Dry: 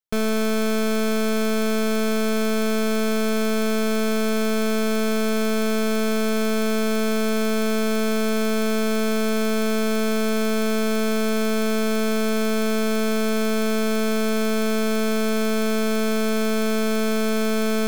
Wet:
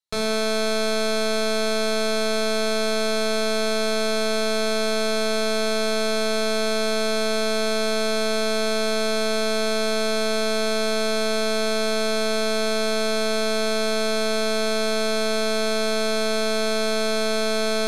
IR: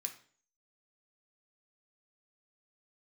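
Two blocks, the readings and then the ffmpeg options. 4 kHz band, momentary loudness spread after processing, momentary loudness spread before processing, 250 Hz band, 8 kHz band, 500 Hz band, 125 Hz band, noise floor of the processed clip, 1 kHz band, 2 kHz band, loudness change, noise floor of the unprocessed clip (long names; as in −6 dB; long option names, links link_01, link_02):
+6.0 dB, 0 LU, 0 LU, −7.0 dB, +2.0 dB, +1.0 dB, can't be measured, −22 dBFS, +1.5 dB, +1.5 dB, −0.5 dB, −21 dBFS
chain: -filter_complex "[0:a]lowpass=11000[link_01];[1:a]atrim=start_sample=2205,afade=type=out:start_time=0.35:duration=0.01,atrim=end_sample=15876,asetrate=23373,aresample=44100[link_02];[link_01][link_02]afir=irnorm=-1:irlink=0"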